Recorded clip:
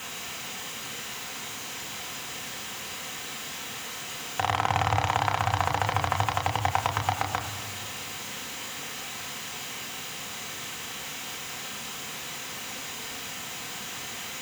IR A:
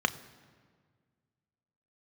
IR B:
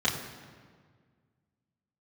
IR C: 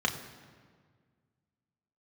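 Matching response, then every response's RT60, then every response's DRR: C; 1.8, 1.7, 1.7 seconds; 9.5, −7.0, 1.5 decibels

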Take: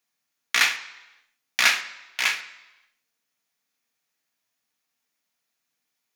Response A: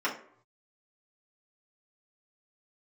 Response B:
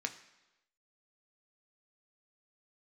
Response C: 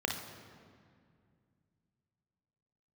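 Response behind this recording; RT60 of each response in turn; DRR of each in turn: B; non-exponential decay, 1.0 s, 2.2 s; −6.5, 5.5, 2.5 decibels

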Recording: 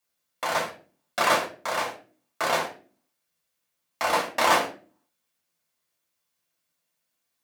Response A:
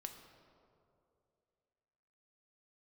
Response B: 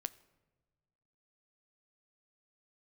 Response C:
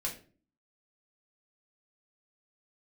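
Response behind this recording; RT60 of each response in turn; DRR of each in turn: C; 2.6 s, non-exponential decay, 0.40 s; 4.5, 14.0, −3.0 decibels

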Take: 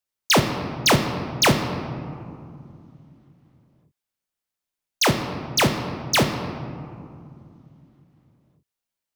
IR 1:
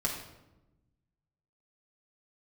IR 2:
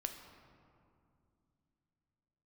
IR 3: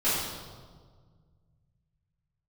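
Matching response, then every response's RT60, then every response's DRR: 2; 1.0, 2.5, 1.7 seconds; −2.5, 5.0, −15.5 decibels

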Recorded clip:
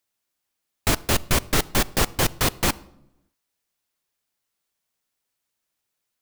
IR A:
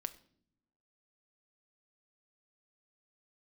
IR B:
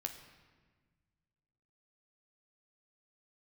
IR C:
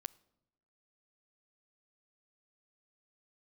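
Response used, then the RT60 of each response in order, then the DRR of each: C; 0.60, 1.5, 0.95 seconds; 10.0, 4.5, 18.5 decibels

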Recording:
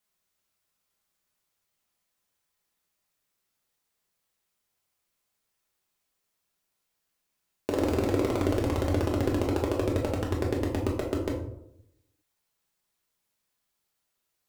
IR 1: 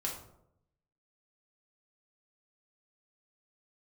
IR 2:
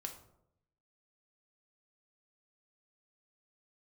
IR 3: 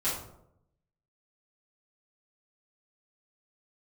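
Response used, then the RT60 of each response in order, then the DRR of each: 1; 0.75, 0.80, 0.75 seconds; −2.5, 3.5, −12.0 decibels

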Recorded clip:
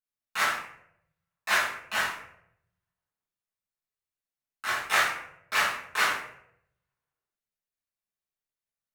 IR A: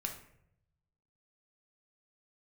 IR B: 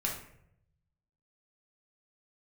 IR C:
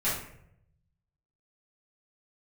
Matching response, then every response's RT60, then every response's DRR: C; 0.75, 0.70, 0.70 seconds; 2.5, −2.0, −11.5 decibels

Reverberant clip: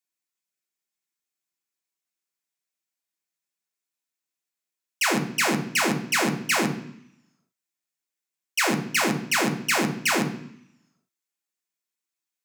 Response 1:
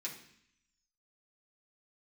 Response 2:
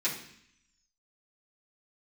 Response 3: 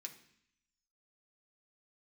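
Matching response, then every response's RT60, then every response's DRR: 3; 0.65, 0.65, 0.65 seconds; −5.0, −10.0, 2.0 decibels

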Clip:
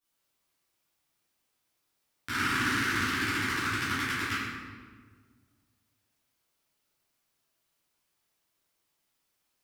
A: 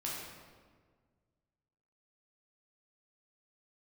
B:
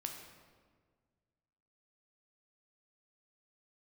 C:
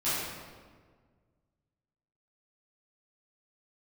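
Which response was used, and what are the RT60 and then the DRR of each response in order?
C; 1.6, 1.6, 1.6 seconds; −5.5, 2.5, −14.5 decibels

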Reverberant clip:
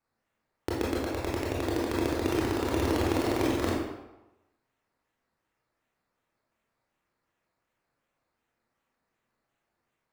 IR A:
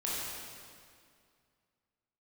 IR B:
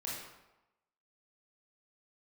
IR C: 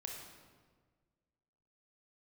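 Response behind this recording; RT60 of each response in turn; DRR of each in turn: B; 2.2, 1.0, 1.5 seconds; −7.0, −5.5, 0.0 decibels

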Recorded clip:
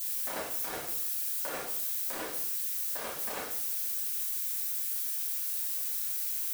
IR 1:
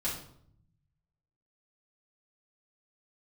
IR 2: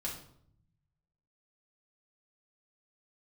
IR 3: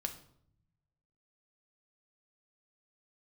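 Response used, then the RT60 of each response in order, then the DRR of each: 2; 0.65, 0.65, 0.65 seconds; −8.5, −4.5, 5.0 decibels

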